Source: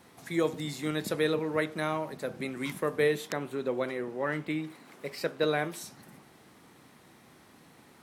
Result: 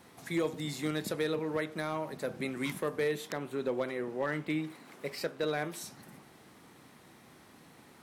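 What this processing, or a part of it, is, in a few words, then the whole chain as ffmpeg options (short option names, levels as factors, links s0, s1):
limiter into clipper: -af "alimiter=limit=0.0891:level=0:latency=1:release=325,asoftclip=type=hard:threshold=0.0631"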